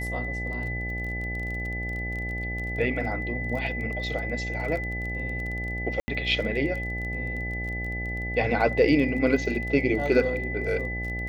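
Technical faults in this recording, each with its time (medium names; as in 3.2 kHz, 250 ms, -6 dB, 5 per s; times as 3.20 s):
buzz 60 Hz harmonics 14 -33 dBFS
crackle 22 per s -33 dBFS
whine 2 kHz -32 dBFS
6.00–6.08 s: dropout 80 ms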